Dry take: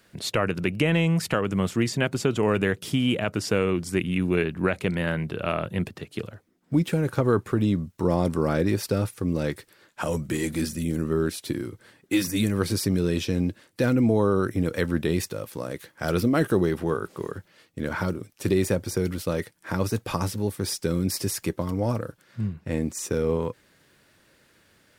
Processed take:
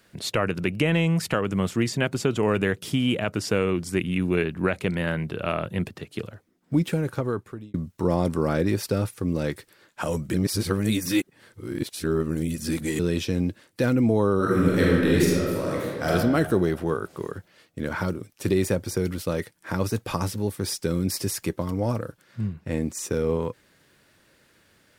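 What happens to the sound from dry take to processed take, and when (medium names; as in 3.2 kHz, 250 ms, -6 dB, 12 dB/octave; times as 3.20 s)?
6.88–7.74 s: fade out
10.34–12.99 s: reverse
14.36–16.09 s: reverb throw, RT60 1.7 s, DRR -5 dB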